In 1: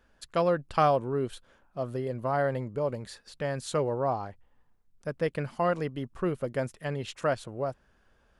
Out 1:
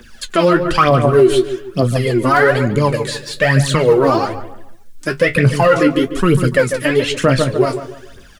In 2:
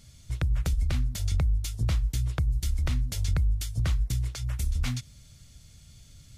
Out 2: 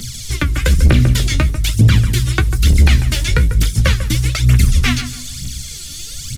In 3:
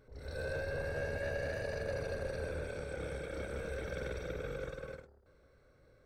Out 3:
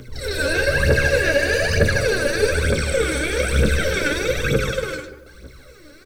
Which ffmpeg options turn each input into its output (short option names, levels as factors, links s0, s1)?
-filter_complex "[0:a]bandreject=f=50:t=h:w=6,bandreject=f=100:t=h:w=6,bandreject=f=150:t=h:w=6,acrossover=split=2700[s0][s1];[s1]acompressor=threshold=0.00158:ratio=4:attack=1:release=60[s2];[s0][s2]amix=inputs=2:normalize=0,bass=f=250:g=-4,treble=f=4000:g=10,aphaser=in_gain=1:out_gain=1:delay=3.6:decay=0.78:speed=1.1:type=triangular,equalizer=f=750:w=0.8:g=-14.5,flanger=delay=8.4:depth=7.8:regen=46:speed=0.46:shape=sinusoidal,acrossover=split=140|4000[s3][s4][s5];[s3]asoftclip=type=tanh:threshold=0.0266[s6];[s4]acontrast=72[s7];[s6][s7][s5]amix=inputs=3:normalize=0,asplit=2[s8][s9];[s9]adelay=145,lowpass=f=1600:p=1,volume=0.316,asplit=2[s10][s11];[s11]adelay=145,lowpass=f=1600:p=1,volume=0.38,asplit=2[s12][s13];[s13]adelay=145,lowpass=f=1600:p=1,volume=0.38,asplit=2[s14][s15];[s15]adelay=145,lowpass=f=1600:p=1,volume=0.38[s16];[s8][s10][s12][s14][s16]amix=inputs=5:normalize=0,alimiter=level_in=14.1:limit=0.891:release=50:level=0:latency=1,volume=0.841"